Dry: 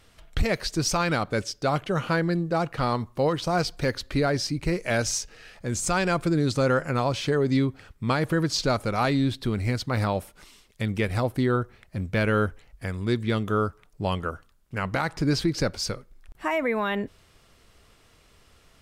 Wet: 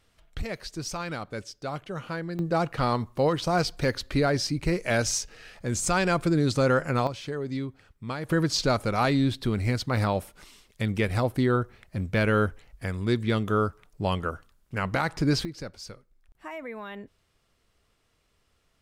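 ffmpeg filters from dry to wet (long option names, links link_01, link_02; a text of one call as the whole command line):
ffmpeg -i in.wav -af "asetnsamples=nb_out_samples=441:pad=0,asendcmd='2.39 volume volume 0dB;7.07 volume volume -9dB;8.29 volume volume 0dB;15.45 volume volume -12.5dB',volume=-9dB" out.wav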